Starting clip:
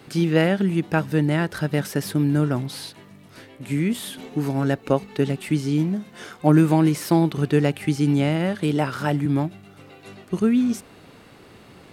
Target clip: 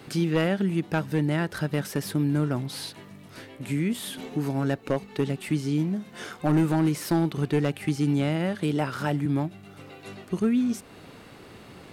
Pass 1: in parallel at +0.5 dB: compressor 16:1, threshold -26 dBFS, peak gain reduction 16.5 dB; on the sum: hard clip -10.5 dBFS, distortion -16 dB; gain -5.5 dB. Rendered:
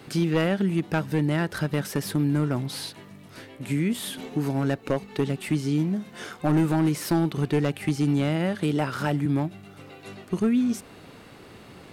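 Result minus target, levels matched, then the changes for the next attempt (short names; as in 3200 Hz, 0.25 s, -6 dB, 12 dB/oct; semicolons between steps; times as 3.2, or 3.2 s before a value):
compressor: peak gain reduction -6 dB
change: compressor 16:1, threshold -32.5 dBFS, peak gain reduction 22.5 dB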